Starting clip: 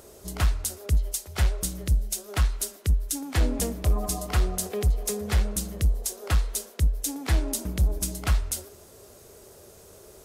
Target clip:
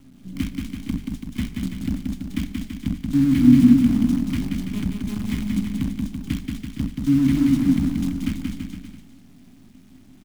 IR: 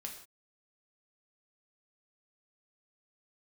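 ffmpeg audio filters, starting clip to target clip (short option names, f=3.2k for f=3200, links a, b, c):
-filter_complex "[0:a]asplit=3[a][b][c];[a]bandpass=f=270:t=q:w=8,volume=0dB[d];[b]bandpass=f=2.29k:t=q:w=8,volume=-6dB[e];[c]bandpass=f=3.01k:t=q:w=8,volume=-9dB[f];[d][e][f]amix=inputs=3:normalize=0,asplit=2[g][h];[h]asetrate=22050,aresample=44100,atempo=2,volume=-11dB[i];[g][i]amix=inputs=2:normalize=0,acrusher=bits=8:dc=4:mix=0:aa=0.000001,lowshelf=f=320:t=q:w=3:g=11.5,aecho=1:1:180|333|463|573.6|667.6:0.631|0.398|0.251|0.158|0.1,asplit=2[j][k];[1:a]atrim=start_sample=2205,asetrate=52920,aresample=44100[l];[k][l]afir=irnorm=-1:irlink=0,volume=-4dB[m];[j][m]amix=inputs=2:normalize=0,volume=5.5dB"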